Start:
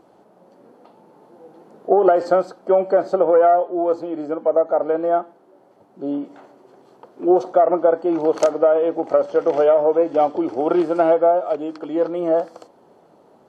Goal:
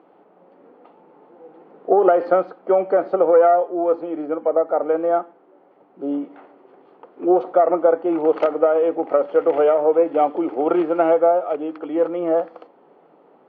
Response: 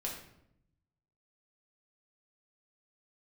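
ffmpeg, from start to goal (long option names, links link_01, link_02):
-af "highpass=frequency=190:width=0.5412,highpass=frequency=190:width=1.3066,equalizer=frequency=220:width_type=q:width=4:gain=-9,equalizer=frequency=360:width_type=q:width=4:gain=-4,equalizer=frequency=620:width_type=q:width=4:gain=-6,equalizer=frequency=950:width_type=q:width=4:gain=-4,equalizer=frequency=1600:width_type=q:width=4:gain=-4,lowpass=frequency=2700:width=0.5412,lowpass=frequency=2700:width=1.3066,volume=3.5dB"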